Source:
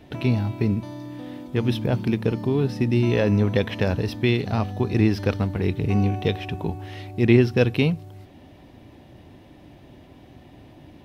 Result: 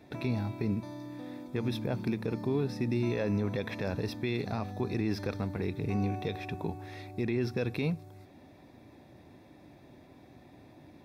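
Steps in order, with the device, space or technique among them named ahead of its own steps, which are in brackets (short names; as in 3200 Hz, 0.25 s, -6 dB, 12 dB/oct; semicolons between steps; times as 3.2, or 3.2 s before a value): PA system with an anti-feedback notch (HPF 130 Hz 6 dB/oct; Butterworth band-stop 3000 Hz, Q 5.1; limiter -15.5 dBFS, peak gain reduction 11 dB); gain -5.5 dB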